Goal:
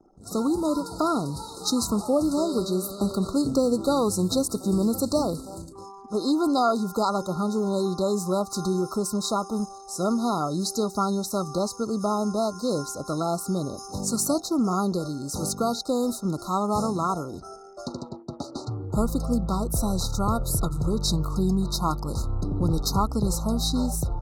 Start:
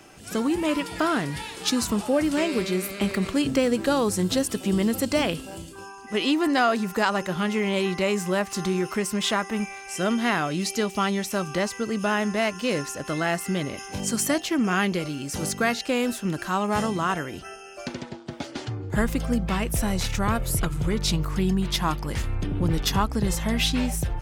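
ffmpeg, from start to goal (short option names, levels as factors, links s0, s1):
-af "afftfilt=real='re*(1-between(b*sr/4096,1400,3700))':imag='im*(1-between(b*sr/4096,1400,3700))':win_size=4096:overlap=0.75,anlmdn=0.0398"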